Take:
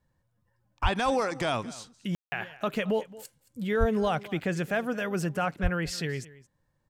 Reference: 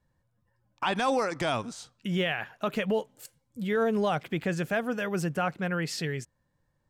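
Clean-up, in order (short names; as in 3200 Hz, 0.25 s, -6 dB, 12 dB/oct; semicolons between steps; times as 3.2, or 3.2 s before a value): de-plosive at 0.82/3.79/5.62; room tone fill 2.15–2.32; inverse comb 0.221 s -19.5 dB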